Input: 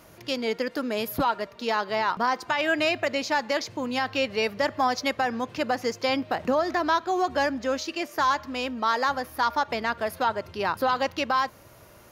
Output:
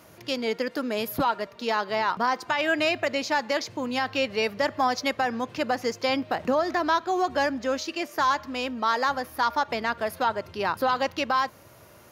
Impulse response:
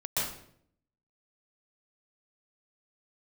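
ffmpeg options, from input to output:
-af "highpass=69"

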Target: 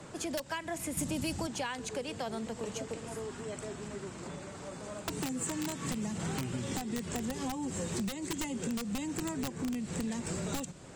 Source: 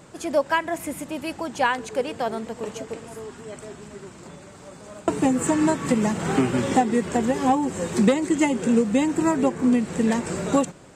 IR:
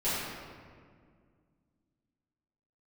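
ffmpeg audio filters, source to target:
-filter_complex "[0:a]acrossover=split=250|610|3700[s0][s1][s2][s3];[s1]aeval=exprs='(mod(7.94*val(0)+1,2)-1)/7.94':c=same[s4];[s3]lowpass=11000[s5];[s0][s4][s2][s5]amix=inputs=4:normalize=0,acrossover=split=180|3000[s6][s7][s8];[s7]acompressor=threshold=0.01:ratio=2[s9];[s6][s9][s8]amix=inputs=3:normalize=0,asettb=1/sr,asplit=3[s10][s11][s12];[s10]atrim=end=5.204[s13];[s11]atrim=start=5.2:end=5.87,asetpts=PTS-STARTPTS,afade=t=in:d=0.004:c=qsin,afade=t=out:st=0.666:d=0.004:c=qsin,highpass=f=140:p=1[s14];[s12]atrim=start=5.866[s15];[s13][s14]acrossfade=d=0.004:c1=hsin:c2=qsin[s16];[s16][s15]acrossfade=d=0.004:c1=qsin:c2=hsin,acompressor=threshold=0.0282:ratio=10,asettb=1/sr,asplit=3[s17][s18][s19];[s17]atrim=end=0.974[s20];[s18]atrim=start=0.97:end=1.47,asetpts=PTS-STARTPTS,afade=t=in:d=0.004:c=qsin,afade=t=out:st=0.496:d=0.004:c=qsin,bass=f=250:g=11,treble=f=4000:g=8[s21];[s19]atrim=start=1.466[s22];[s20][s21]acrossfade=d=0.004:c1=hsin:c2=qsin[s23];[s23][s22]acrossfade=d=0.004:c1=qsin:c2=hsin,asoftclip=type=tanh:threshold=0.0596"

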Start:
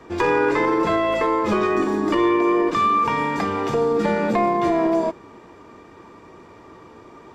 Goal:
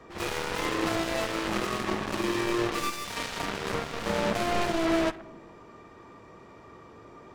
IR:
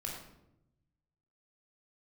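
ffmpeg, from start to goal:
-filter_complex "[0:a]volume=17.8,asoftclip=hard,volume=0.0562,asplit=2[s0][s1];[1:a]atrim=start_sample=2205[s2];[s1][s2]afir=irnorm=-1:irlink=0,volume=0.794[s3];[s0][s3]amix=inputs=2:normalize=0,aeval=exprs='0.282*(cos(1*acos(clip(val(0)/0.282,-1,1)))-cos(1*PI/2))+0.0708*(cos(7*acos(clip(val(0)/0.282,-1,1)))-cos(7*PI/2))':c=same,volume=0.501"

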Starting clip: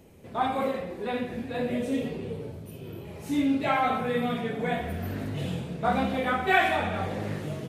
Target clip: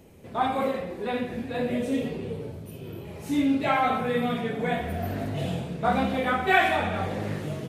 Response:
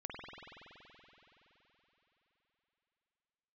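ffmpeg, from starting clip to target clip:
-filter_complex "[0:a]asettb=1/sr,asplit=3[s0][s1][s2];[s0]atrim=end=4.924[s3];[s1]atrim=start=4.92:end=5.68,asetpts=PTS-STARTPTS,afade=t=in:d=0.004:c=qsin,afade=t=out:st=0.756:d=0.004:c=qsin,equalizer=f=690:w=4.2:g=9[s4];[s2]atrim=start=5.676[s5];[s3][s4]acrossfade=d=0.004:c1=hsin:c2=qsin[s6];[s6][s5]acrossfade=d=0.004:c1=qsin:c2=hsin,volume=1.19"

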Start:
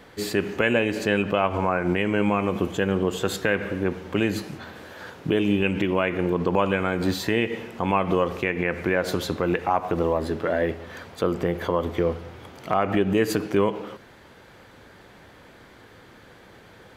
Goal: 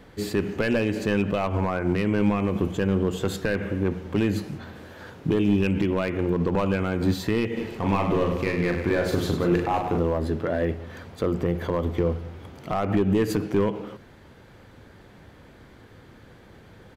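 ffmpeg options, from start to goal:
-filter_complex "[0:a]asoftclip=type=hard:threshold=0.178,lowshelf=f=270:g=11.5,bandreject=f=60:t=h:w=6,bandreject=f=120:t=h:w=6,bandreject=f=180:t=h:w=6,asplit=3[s0][s1][s2];[s0]afade=t=out:st=7.56:d=0.02[s3];[s1]aecho=1:1:40|100|190|325|527.5:0.631|0.398|0.251|0.158|0.1,afade=t=in:st=7.56:d=0.02,afade=t=out:st=9.99:d=0.02[s4];[s2]afade=t=in:st=9.99:d=0.02[s5];[s3][s4][s5]amix=inputs=3:normalize=0,volume=0.596"

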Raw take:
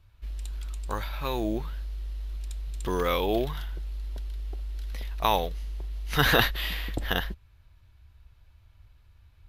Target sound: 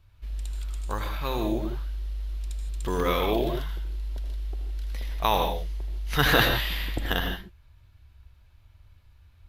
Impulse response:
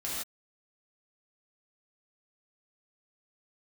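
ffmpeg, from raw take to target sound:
-filter_complex "[0:a]asplit=2[s0][s1];[1:a]atrim=start_sample=2205,atrim=end_sample=4410,adelay=78[s2];[s1][s2]afir=irnorm=-1:irlink=0,volume=0.473[s3];[s0][s3]amix=inputs=2:normalize=0"

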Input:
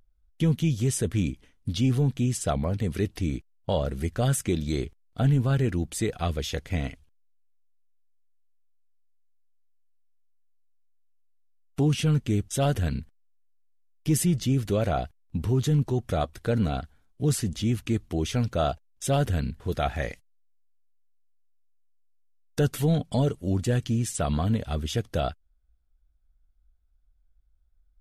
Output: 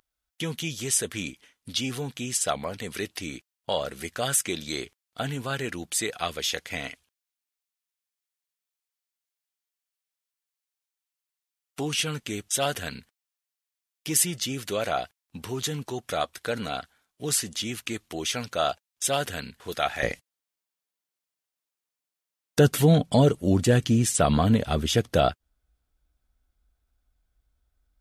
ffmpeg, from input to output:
-af "asetnsamples=n=441:p=0,asendcmd='20.03 highpass f 170',highpass=f=1400:p=1,volume=2.37"

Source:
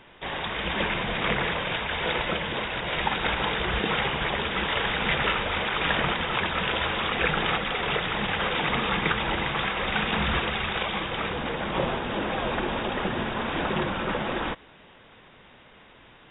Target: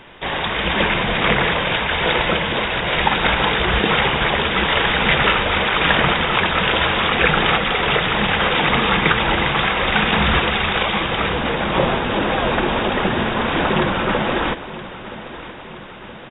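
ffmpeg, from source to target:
-af "aecho=1:1:972|1944|2916|3888|4860|5832:0.168|0.101|0.0604|0.0363|0.0218|0.0131,volume=2.82"

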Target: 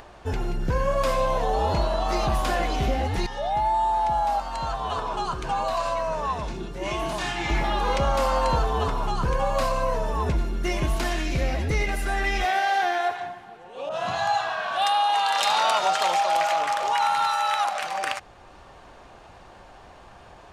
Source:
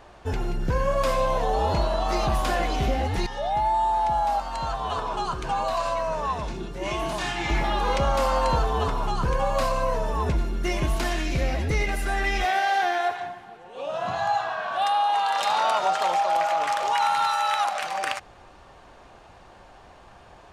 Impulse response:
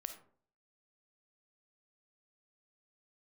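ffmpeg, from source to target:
-filter_complex "[0:a]acompressor=mode=upward:threshold=0.00794:ratio=2.5,asettb=1/sr,asplit=3[s0][s1][s2];[s0]atrim=end=13.894[s3];[s1]atrim=start=13.89:end=16.61,asetpts=PTS-STARTPTS,afade=t=in:d=0.004:c=qsin,afade=t=out:st=2.716:d=0.004:c=qsin,adynamicequalizer=threshold=0.0126:dfrequency=1800:dqfactor=0.7:tfrequency=1800:tqfactor=0.7:attack=5:release=100:ratio=0.375:range=3:mode=boostabove:tftype=highshelf[s4];[s2]atrim=start=16.606[s5];[s3][s4]acrossfade=d=0.004:c1=hsin:c2=qsin[s6];[s6][s5]acrossfade=d=0.004:c1=qsin:c2=hsin"

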